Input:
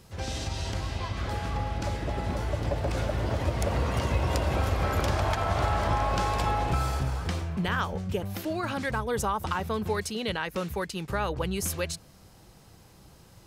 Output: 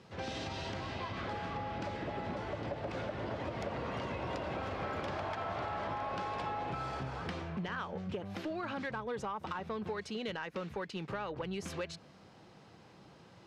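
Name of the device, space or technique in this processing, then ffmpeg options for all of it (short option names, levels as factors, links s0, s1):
AM radio: -af "highpass=160,lowpass=3600,acompressor=threshold=0.0178:ratio=4,asoftclip=type=tanh:threshold=0.0398"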